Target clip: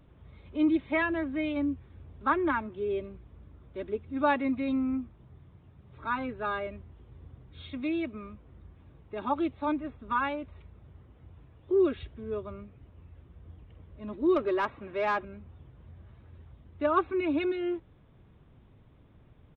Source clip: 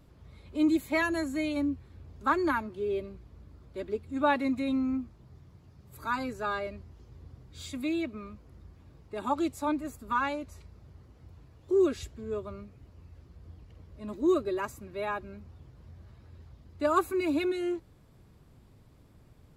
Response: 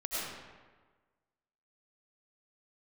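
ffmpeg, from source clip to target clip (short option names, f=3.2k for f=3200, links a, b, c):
-filter_complex "[0:a]aresample=8000,aresample=44100,asettb=1/sr,asplit=3[a][b][c];[a]atrim=end=14.364[d];[b]atrim=start=14.36:end=15.25,asetpts=PTS-STARTPTS,afade=t=in:d=0.004:c=qsin,afade=t=out:st=0.886:d=0.004:c=qsin,asplit=2[e][f];[f]highpass=f=720:p=1,volume=16dB,asoftclip=type=tanh:threshold=-18dB[g];[e][g]amix=inputs=2:normalize=0,lowpass=f=2.1k:p=1,volume=-6dB[h];[c]atrim=start=15.246[i];[d][h]acrossfade=d=0.004:c1=hsin:c2=qsin[j];[j][i]acrossfade=d=0.004:c1=qsin:c2=hsin"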